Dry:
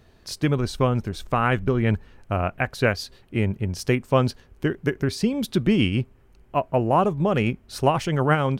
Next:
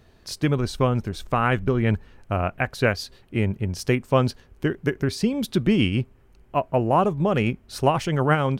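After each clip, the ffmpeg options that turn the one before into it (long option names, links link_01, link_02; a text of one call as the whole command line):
ffmpeg -i in.wav -af anull out.wav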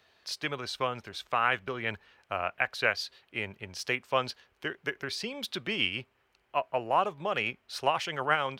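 ffmpeg -i in.wav -filter_complex "[0:a]crystalizer=i=5.5:c=0,highpass=66,acrossover=split=480 4200:gain=0.178 1 0.0794[link_01][link_02][link_03];[link_01][link_02][link_03]amix=inputs=3:normalize=0,volume=-6.5dB" out.wav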